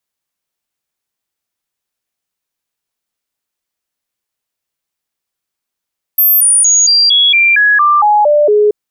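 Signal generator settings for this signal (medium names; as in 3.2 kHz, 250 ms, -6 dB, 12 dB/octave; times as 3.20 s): stepped sine 13.4 kHz down, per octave 2, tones 11, 0.23 s, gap 0.00 s -5.5 dBFS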